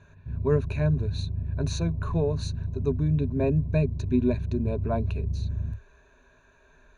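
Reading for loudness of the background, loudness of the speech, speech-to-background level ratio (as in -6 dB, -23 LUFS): -32.5 LUFS, -28.5 LUFS, 4.0 dB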